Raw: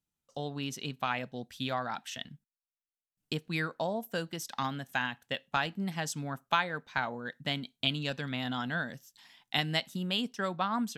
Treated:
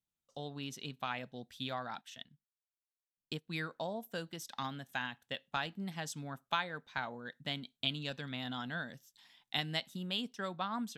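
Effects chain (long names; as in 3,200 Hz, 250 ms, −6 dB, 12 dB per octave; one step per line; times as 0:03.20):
parametric band 3,600 Hz +4.5 dB 0.27 octaves
0:02.01–0:03.49: expander for the loud parts 1.5 to 1, over −50 dBFS
level −6.5 dB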